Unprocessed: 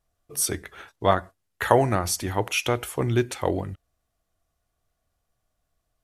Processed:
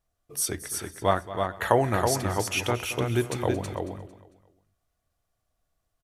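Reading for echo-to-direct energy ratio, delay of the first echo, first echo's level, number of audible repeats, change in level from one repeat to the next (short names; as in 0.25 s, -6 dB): -4.5 dB, 0.225 s, -15.0 dB, 6, no steady repeat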